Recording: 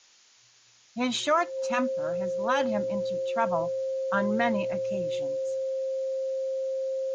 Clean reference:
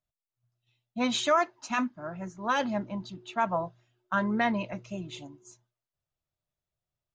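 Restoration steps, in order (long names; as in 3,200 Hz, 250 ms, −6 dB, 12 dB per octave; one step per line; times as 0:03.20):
notch filter 530 Hz, Q 30
noise reduction from a noise print 30 dB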